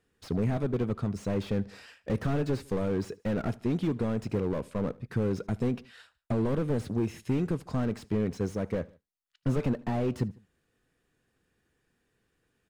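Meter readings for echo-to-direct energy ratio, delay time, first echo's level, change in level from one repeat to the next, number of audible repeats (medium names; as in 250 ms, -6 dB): -22.0 dB, 75 ms, -23.0 dB, -5.0 dB, 2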